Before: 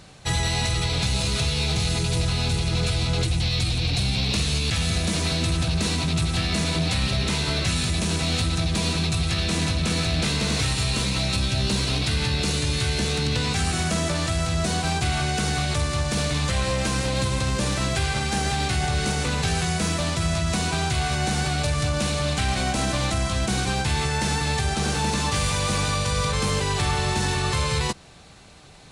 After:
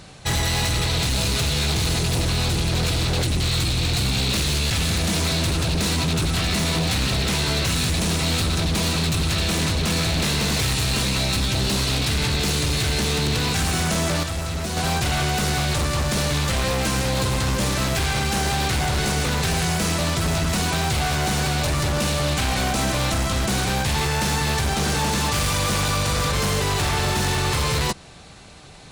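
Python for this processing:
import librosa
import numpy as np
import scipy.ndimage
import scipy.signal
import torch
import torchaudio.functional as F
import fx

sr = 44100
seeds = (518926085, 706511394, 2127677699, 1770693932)

y = 10.0 ** (-21.0 / 20.0) * (np.abs((x / 10.0 ** (-21.0 / 20.0) + 3.0) % 4.0 - 2.0) - 1.0)
y = fx.comb_fb(y, sr, f0_hz=75.0, decay_s=0.19, harmonics='odd', damping=0.0, mix_pct=60, at=(14.23, 14.77))
y = y * 10.0 ** (4.0 / 20.0)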